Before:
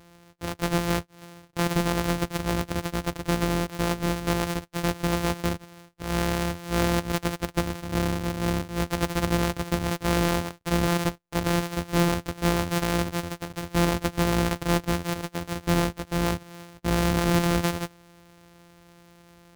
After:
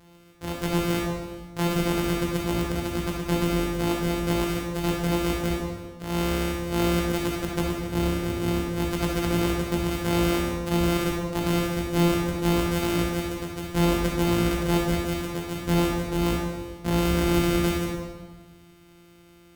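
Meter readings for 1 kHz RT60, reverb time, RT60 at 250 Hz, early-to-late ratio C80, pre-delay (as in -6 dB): 1.3 s, 1.4 s, 1.7 s, 4.0 dB, 14 ms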